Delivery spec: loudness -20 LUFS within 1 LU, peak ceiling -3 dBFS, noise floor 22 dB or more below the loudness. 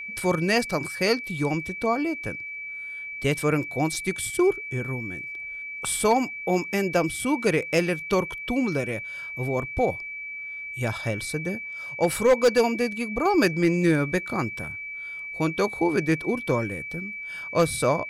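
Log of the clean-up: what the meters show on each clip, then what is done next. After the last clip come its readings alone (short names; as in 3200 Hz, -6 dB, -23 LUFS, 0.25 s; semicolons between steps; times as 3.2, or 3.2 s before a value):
clipped 0.2%; flat tops at -12.5 dBFS; steady tone 2300 Hz; tone level -33 dBFS; loudness -25.5 LUFS; peak -12.5 dBFS; loudness target -20.0 LUFS
-> clip repair -12.5 dBFS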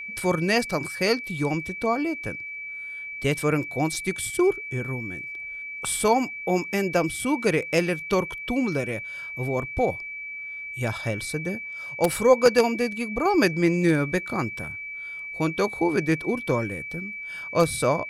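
clipped 0.0%; steady tone 2300 Hz; tone level -33 dBFS
-> notch 2300 Hz, Q 30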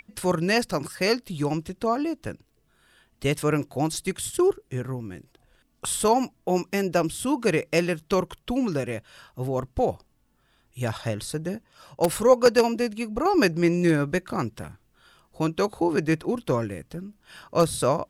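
steady tone none; loudness -25.5 LUFS; peak -3.5 dBFS; loudness target -20.0 LUFS
-> gain +5.5 dB; limiter -3 dBFS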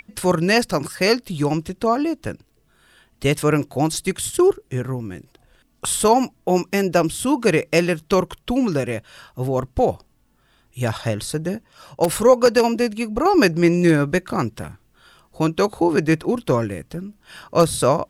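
loudness -20.0 LUFS; peak -3.0 dBFS; noise floor -61 dBFS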